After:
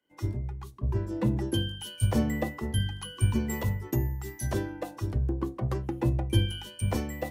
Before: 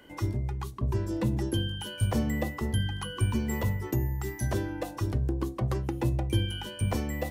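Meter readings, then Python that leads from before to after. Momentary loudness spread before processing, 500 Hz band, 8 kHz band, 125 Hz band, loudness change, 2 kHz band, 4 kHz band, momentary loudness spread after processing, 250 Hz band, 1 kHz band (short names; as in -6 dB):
5 LU, 0.0 dB, +1.0 dB, 0.0 dB, 0.0 dB, -1.5 dB, +0.5 dB, 8 LU, +0.5 dB, -1.0 dB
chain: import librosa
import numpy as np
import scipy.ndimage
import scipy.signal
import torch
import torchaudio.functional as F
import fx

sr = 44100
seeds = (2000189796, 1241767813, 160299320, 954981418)

y = fx.band_widen(x, sr, depth_pct=100)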